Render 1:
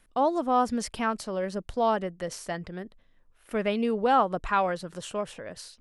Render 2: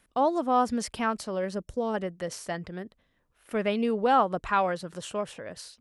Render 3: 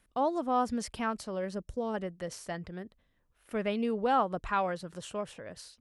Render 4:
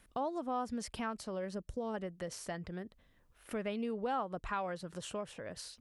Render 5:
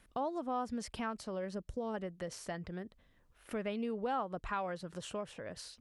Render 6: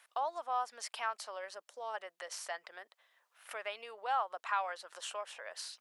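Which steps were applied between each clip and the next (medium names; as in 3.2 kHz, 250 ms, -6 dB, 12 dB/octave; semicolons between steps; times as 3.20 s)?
high-pass 46 Hz; time-frequency box 1.63–1.94 s, 610–5400 Hz -10 dB
bass shelf 100 Hz +7.5 dB; trim -5 dB
compression 2:1, threshold -49 dBFS, peak gain reduction 14.5 dB; trim +5 dB
treble shelf 9 kHz -5.5 dB
high-pass 710 Hz 24 dB/octave; trim +4.5 dB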